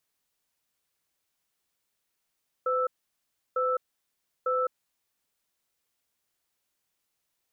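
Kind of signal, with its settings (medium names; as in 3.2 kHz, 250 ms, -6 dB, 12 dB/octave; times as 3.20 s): cadence 508 Hz, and 1.32 kHz, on 0.21 s, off 0.69 s, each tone -26.5 dBFS 2.45 s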